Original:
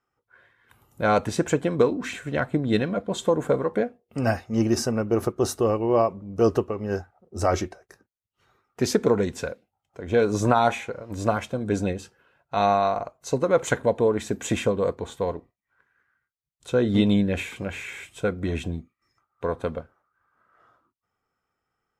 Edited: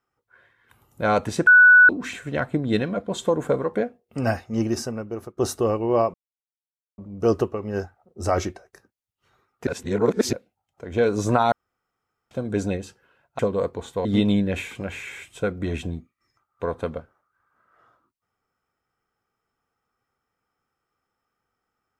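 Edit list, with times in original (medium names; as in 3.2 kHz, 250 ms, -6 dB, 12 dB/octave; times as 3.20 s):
1.47–1.89 s: bleep 1.48 kHz -8 dBFS
4.44–5.37 s: fade out, to -17 dB
6.14 s: insert silence 0.84 s
8.83–9.49 s: reverse
10.68–11.47 s: room tone
12.55–14.63 s: delete
15.29–16.86 s: delete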